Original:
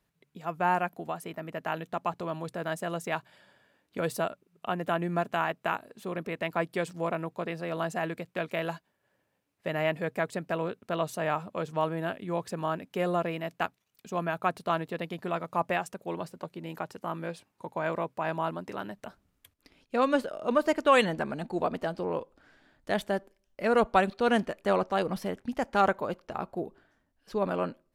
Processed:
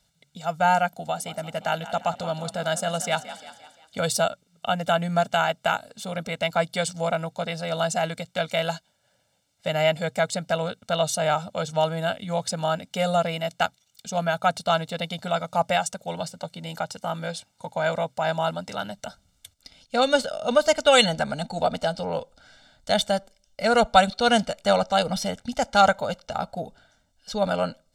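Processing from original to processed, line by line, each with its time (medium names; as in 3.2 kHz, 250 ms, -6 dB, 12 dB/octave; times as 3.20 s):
0.93–4.00 s: frequency-shifting echo 174 ms, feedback 52%, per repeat +37 Hz, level -14 dB
whole clip: high-order bell 5.4 kHz +11.5 dB; comb 1.4 ms, depth 98%; trim +2.5 dB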